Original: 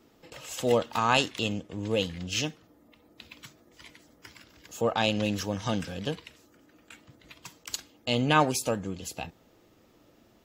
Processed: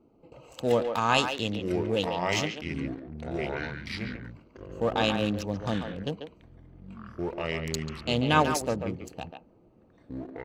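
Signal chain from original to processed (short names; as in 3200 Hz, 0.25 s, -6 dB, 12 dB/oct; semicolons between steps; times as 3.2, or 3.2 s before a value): Wiener smoothing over 25 samples; echoes that change speed 0.762 s, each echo -5 st, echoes 3, each echo -6 dB; speakerphone echo 0.14 s, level -6 dB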